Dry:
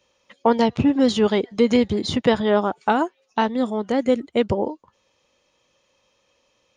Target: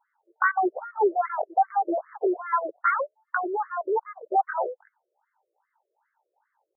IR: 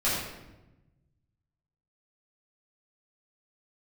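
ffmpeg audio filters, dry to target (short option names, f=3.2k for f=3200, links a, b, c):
-af "highshelf=f=2.2k:g=-10.5,asetrate=72056,aresample=44100,atempo=0.612027,afftfilt=real='re*between(b*sr/1024,430*pow(1600/430,0.5+0.5*sin(2*PI*2.5*pts/sr))/1.41,430*pow(1600/430,0.5+0.5*sin(2*PI*2.5*pts/sr))*1.41)':imag='im*between(b*sr/1024,430*pow(1600/430,0.5+0.5*sin(2*PI*2.5*pts/sr))/1.41,430*pow(1600/430,0.5+0.5*sin(2*PI*2.5*pts/sr))*1.41)':win_size=1024:overlap=0.75"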